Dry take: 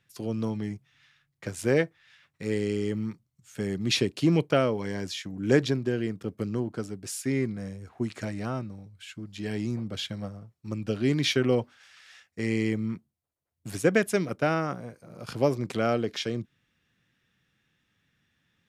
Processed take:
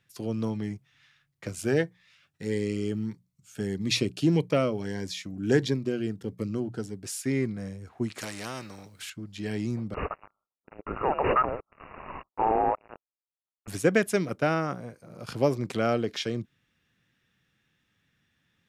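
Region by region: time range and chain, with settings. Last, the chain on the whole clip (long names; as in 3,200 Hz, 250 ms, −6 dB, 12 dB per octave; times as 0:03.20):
0:01.47–0:06.97: mains-hum notches 60/120/180 Hz + phaser whose notches keep moving one way rising 1.6 Hz
0:08.18–0:09.10: parametric band 87 Hz −7 dB 1.2 octaves + every bin compressed towards the loudest bin 2 to 1
0:09.94–0:13.68: linear-phase brick-wall high-pass 1,400 Hz + leveller curve on the samples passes 5 + voice inversion scrambler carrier 2,800 Hz
whole clip: no processing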